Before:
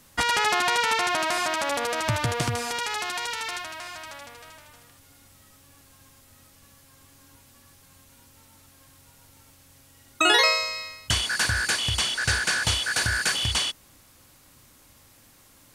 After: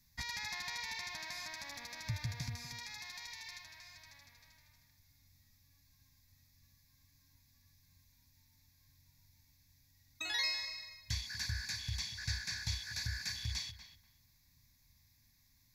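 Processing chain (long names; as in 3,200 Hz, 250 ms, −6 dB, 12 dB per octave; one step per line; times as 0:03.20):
guitar amp tone stack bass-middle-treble 6-0-2
phaser with its sweep stopped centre 2,000 Hz, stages 8
tape delay 240 ms, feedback 22%, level −9.5 dB, low-pass 2,500 Hz
level +4 dB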